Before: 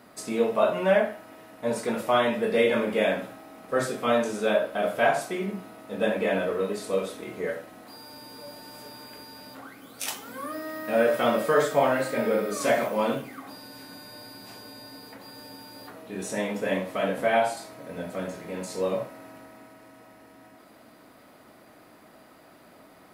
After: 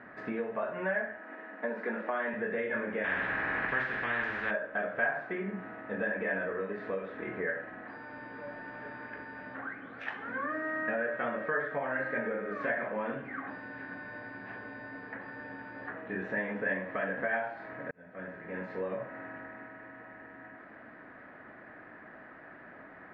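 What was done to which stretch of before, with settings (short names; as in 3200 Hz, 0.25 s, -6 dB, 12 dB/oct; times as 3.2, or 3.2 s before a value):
1.18–2.34 elliptic high-pass 200 Hz
3.04–4.51 spectral compressor 4:1
17.91–19.09 fade in
whole clip: compressor 5:1, threshold -33 dBFS; LPF 2300 Hz 24 dB/oct; bell 1700 Hz +15 dB 0.37 oct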